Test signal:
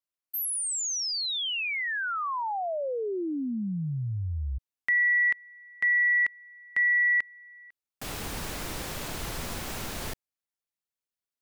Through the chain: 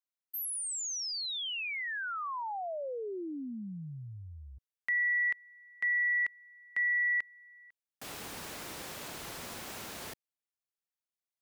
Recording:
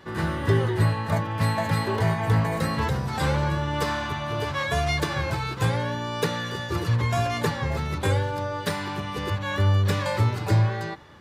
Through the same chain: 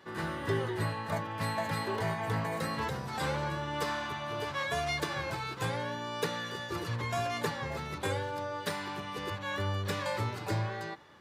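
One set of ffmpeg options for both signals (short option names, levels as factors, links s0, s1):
-af "highpass=f=240:p=1,volume=0.501"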